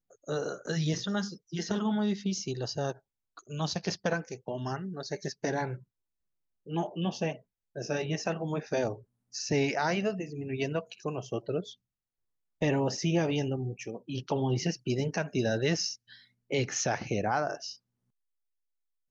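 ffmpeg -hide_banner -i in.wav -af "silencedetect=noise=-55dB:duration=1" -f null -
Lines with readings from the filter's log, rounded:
silence_start: 17.76
silence_end: 19.10 | silence_duration: 1.34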